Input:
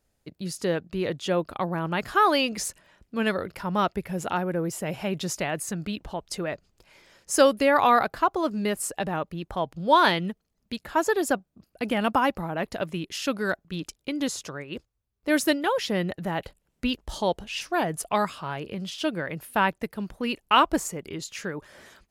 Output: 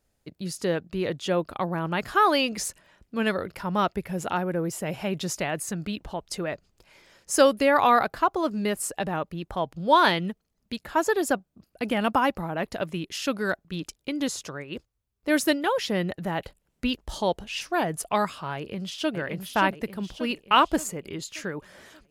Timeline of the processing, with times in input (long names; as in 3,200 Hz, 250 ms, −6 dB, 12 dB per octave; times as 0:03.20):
0:18.56–0:19.16: delay throw 580 ms, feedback 50%, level −5 dB
0:20.59–0:21.30: notch filter 5,700 Hz